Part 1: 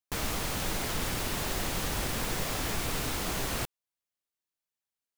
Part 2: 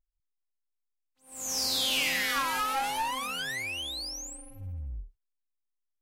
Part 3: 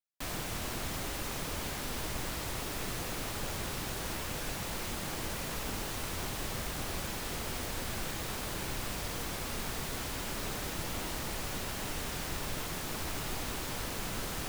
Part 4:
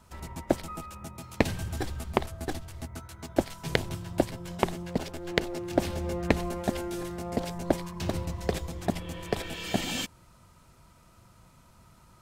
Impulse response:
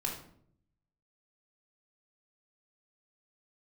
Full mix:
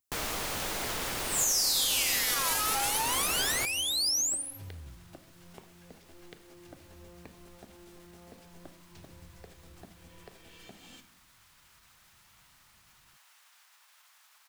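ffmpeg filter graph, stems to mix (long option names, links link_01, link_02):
-filter_complex "[0:a]volume=0dB[link_01];[1:a]highpass=frequency=84:width=0.5412,highpass=frequency=84:width=1.3066,bass=frequency=250:gain=0,treble=frequency=4000:gain=15,volume=-1dB[link_02];[2:a]highpass=frequency=950:width=0.5412,highpass=frequency=950:width=1.3066,alimiter=level_in=9dB:limit=-24dB:level=0:latency=1,volume=-9dB,adelay=1400,volume=-19dB[link_03];[3:a]acompressor=threshold=-38dB:ratio=3,adelay=950,volume=-16.5dB,asplit=2[link_04][link_05];[link_05]volume=-7.5dB[link_06];[4:a]atrim=start_sample=2205[link_07];[link_06][link_07]afir=irnorm=-1:irlink=0[link_08];[link_01][link_02][link_03][link_04][link_08]amix=inputs=5:normalize=0,acrossover=split=330[link_09][link_10];[link_09]acompressor=threshold=-41dB:ratio=6[link_11];[link_11][link_10]amix=inputs=2:normalize=0,alimiter=limit=-18dB:level=0:latency=1:release=140"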